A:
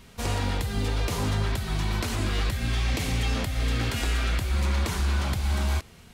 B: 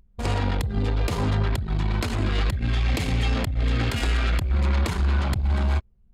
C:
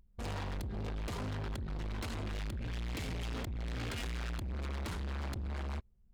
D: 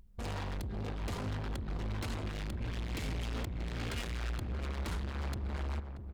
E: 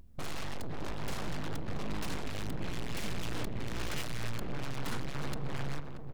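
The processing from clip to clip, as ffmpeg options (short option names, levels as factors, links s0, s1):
-af "bandreject=f=5800:w=13,anlmdn=39.8,volume=1.5"
-af "asoftclip=type=hard:threshold=0.0355,volume=0.422"
-filter_complex "[0:a]acompressor=threshold=0.00224:ratio=1.5,asplit=2[s0][s1];[s1]adelay=631,lowpass=f=980:p=1,volume=0.447,asplit=2[s2][s3];[s3]adelay=631,lowpass=f=980:p=1,volume=0.41,asplit=2[s4][s5];[s5]adelay=631,lowpass=f=980:p=1,volume=0.41,asplit=2[s6][s7];[s7]adelay=631,lowpass=f=980:p=1,volume=0.41,asplit=2[s8][s9];[s9]adelay=631,lowpass=f=980:p=1,volume=0.41[s10];[s2][s4][s6][s8][s10]amix=inputs=5:normalize=0[s11];[s0][s11]amix=inputs=2:normalize=0,volume=2"
-af "aeval=exprs='abs(val(0))':c=same,volume=1.78"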